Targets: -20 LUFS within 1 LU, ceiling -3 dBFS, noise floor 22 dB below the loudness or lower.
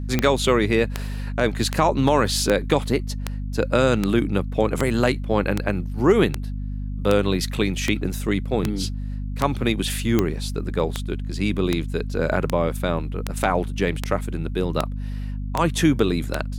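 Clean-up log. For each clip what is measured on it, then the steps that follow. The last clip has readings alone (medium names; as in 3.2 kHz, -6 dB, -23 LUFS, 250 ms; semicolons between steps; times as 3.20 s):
clicks found 22; hum 50 Hz; highest harmonic 250 Hz; hum level -26 dBFS; loudness -23.0 LUFS; peak level -4.0 dBFS; loudness target -20.0 LUFS
-> de-click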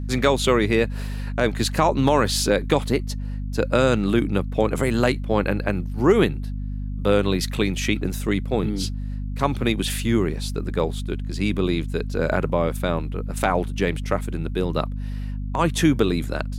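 clicks found 0; hum 50 Hz; highest harmonic 250 Hz; hum level -26 dBFS
-> hum notches 50/100/150/200/250 Hz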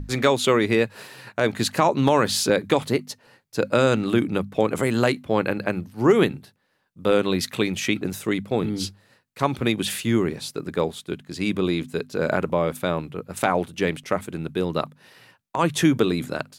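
hum not found; loudness -23.5 LUFS; peak level -4.0 dBFS; loudness target -20.0 LUFS
-> trim +3.5 dB; peak limiter -3 dBFS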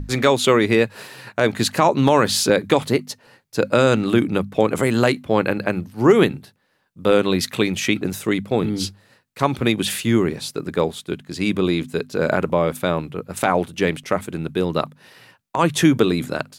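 loudness -20.0 LUFS; peak level -3.0 dBFS; noise floor -64 dBFS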